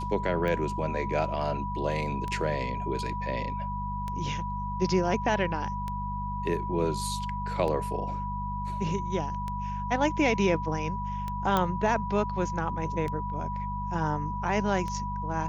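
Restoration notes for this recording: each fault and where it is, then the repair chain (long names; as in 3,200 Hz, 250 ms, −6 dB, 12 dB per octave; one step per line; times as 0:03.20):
mains hum 50 Hz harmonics 4 −35 dBFS
scratch tick 33 1/3 rpm −21 dBFS
whistle 980 Hz −33 dBFS
0:11.57: click −12 dBFS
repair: click removal
hum removal 50 Hz, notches 4
notch filter 980 Hz, Q 30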